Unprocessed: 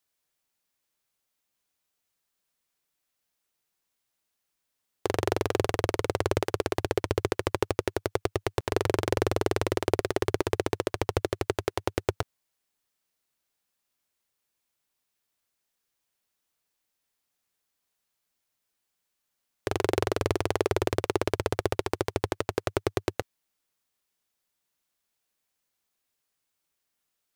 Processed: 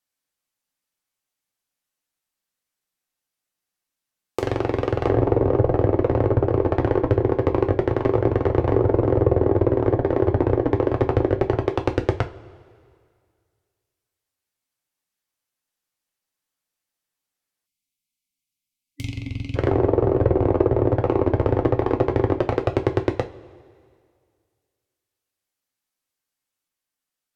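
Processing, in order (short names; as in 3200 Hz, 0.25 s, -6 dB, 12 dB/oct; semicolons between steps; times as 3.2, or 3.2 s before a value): sample leveller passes 3; reverse echo 0.671 s -3.5 dB; treble ducked by the level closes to 820 Hz, closed at -15 dBFS; on a send at -4 dB: reverb, pre-delay 3 ms; on the sum: spectral gain 17.66–19.56, 300–2000 Hz -28 dB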